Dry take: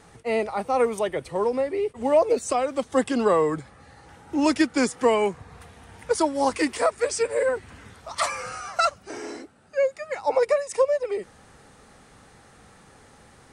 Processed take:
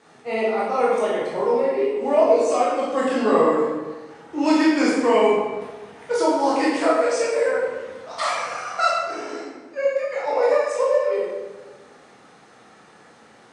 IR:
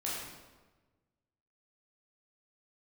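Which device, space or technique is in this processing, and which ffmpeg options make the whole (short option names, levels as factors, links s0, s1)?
supermarket ceiling speaker: -filter_complex "[0:a]highpass=220,lowpass=6500[s0];[1:a]atrim=start_sample=2205[s1];[s0][s1]afir=irnorm=-1:irlink=0"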